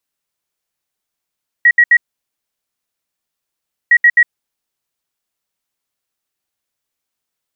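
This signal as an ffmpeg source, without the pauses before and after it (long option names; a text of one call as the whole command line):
ffmpeg -f lavfi -i "aevalsrc='0.596*sin(2*PI*1910*t)*clip(min(mod(mod(t,2.26),0.13),0.06-mod(mod(t,2.26),0.13))/0.005,0,1)*lt(mod(t,2.26),0.39)':duration=4.52:sample_rate=44100" out.wav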